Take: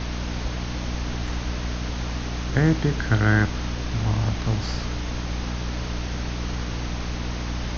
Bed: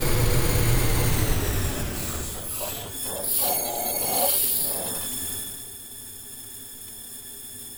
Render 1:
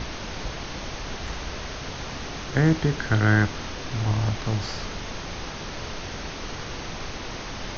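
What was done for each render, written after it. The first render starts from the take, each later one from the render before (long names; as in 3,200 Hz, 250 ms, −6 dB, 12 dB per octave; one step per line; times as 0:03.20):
mains-hum notches 60/120/180/240/300 Hz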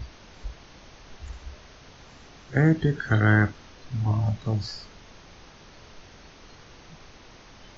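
noise reduction from a noise print 15 dB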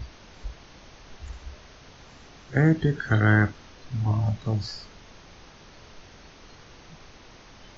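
no processing that can be heard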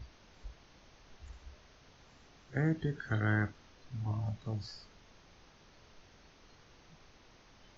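level −11.5 dB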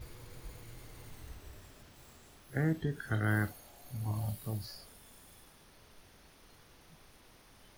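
mix in bed −30 dB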